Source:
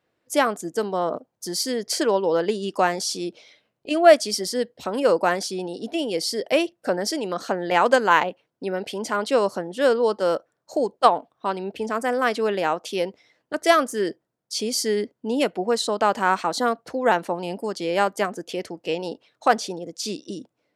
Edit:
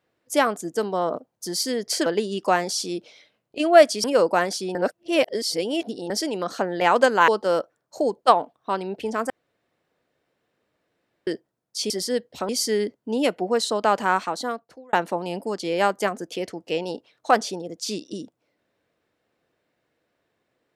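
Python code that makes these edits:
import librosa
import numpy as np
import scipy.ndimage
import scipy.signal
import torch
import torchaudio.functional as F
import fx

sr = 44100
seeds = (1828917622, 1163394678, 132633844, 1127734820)

y = fx.edit(x, sr, fx.cut(start_s=2.06, length_s=0.31),
    fx.move(start_s=4.35, length_s=0.59, to_s=14.66),
    fx.reverse_span(start_s=5.65, length_s=1.35),
    fx.cut(start_s=8.18, length_s=1.86),
    fx.room_tone_fill(start_s=12.06, length_s=1.97),
    fx.fade_out_span(start_s=16.2, length_s=0.9), tone=tone)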